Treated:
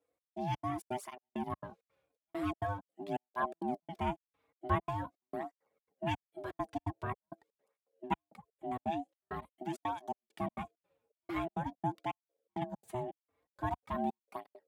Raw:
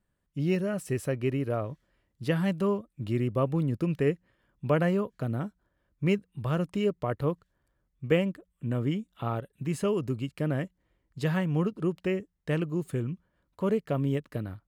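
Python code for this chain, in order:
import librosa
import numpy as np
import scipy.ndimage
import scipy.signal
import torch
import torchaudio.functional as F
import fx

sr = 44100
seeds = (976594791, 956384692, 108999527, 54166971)

y = fx.step_gate(x, sr, bpm=166, pattern='xx..xx.xx.x', floor_db=-60.0, edge_ms=4.5)
y = y + 0.32 * np.pad(y, (int(3.6 * sr / 1000.0), 0))[:len(y)]
y = y * np.sin(2.0 * np.pi * 500.0 * np.arange(len(y)) / sr)
y = scipy.signal.sosfilt(scipy.signal.butter(2, 62.0, 'highpass', fs=sr, output='sos'), y)
y = fx.flanger_cancel(y, sr, hz=0.45, depth_ms=5.6)
y = y * librosa.db_to_amplitude(-1.5)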